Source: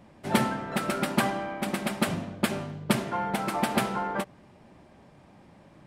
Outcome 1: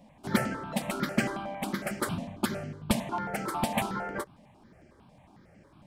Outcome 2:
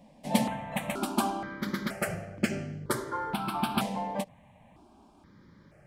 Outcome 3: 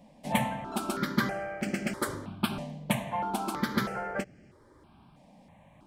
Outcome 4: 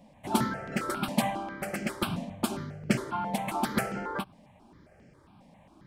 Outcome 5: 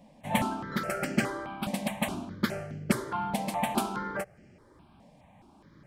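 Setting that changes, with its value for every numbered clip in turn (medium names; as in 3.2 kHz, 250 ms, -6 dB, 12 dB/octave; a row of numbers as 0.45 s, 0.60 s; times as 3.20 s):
stepped phaser, rate: 11 Hz, 2.1 Hz, 3.1 Hz, 7.4 Hz, 4.8 Hz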